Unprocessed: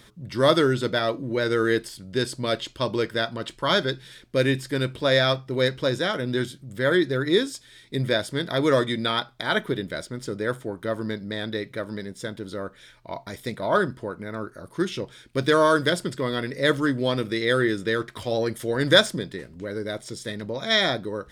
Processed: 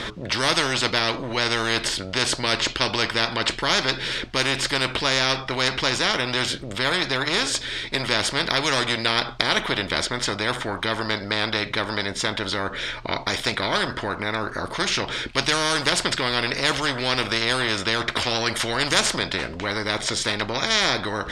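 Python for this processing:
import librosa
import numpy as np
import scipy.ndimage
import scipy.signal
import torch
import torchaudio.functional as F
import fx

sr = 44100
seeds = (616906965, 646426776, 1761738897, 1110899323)

y = scipy.signal.sosfilt(scipy.signal.butter(2, 4200.0, 'lowpass', fs=sr, output='sos'), x)
y = fx.peak_eq(y, sr, hz=150.0, db=-7.5, octaves=1.1)
y = fx.spectral_comp(y, sr, ratio=4.0)
y = y * 10.0 ** (2.0 / 20.0)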